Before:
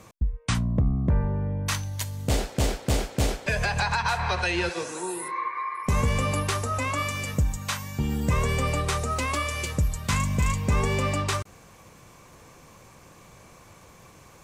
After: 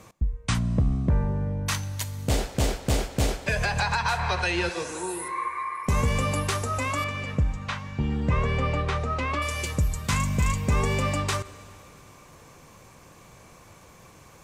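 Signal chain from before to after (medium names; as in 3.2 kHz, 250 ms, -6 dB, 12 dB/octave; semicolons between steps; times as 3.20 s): 7.04–9.42 s: low-pass 3.1 kHz 12 dB/octave; plate-style reverb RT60 3.3 s, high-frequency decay 0.85×, DRR 17 dB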